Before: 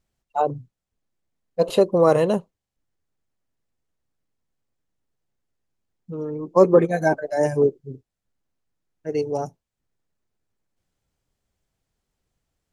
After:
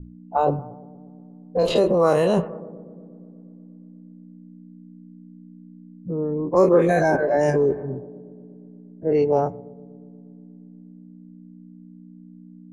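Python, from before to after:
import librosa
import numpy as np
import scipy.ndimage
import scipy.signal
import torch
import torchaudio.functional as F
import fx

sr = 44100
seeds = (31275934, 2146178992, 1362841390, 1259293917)

p1 = fx.spec_dilate(x, sr, span_ms=60)
p2 = p1 + fx.echo_bbd(p1, sr, ms=119, stages=2048, feedback_pct=75, wet_db=-23.5, dry=0)
p3 = fx.add_hum(p2, sr, base_hz=60, snr_db=17)
p4 = fx.env_lowpass(p3, sr, base_hz=360.0, full_db=-11.0)
p5 = fx.over_compress(p4, sr, threshold_db=-20.0, ratio=-0.5)
p6 = p4 + F.gain(torch.from_numpy(p5), 0.0).numpy()
p7 = fx.hum_notches(p6, sr, base_hz=60, count=2)
y = F.gain(torch.from_numpy(p7), -5.5).numpy()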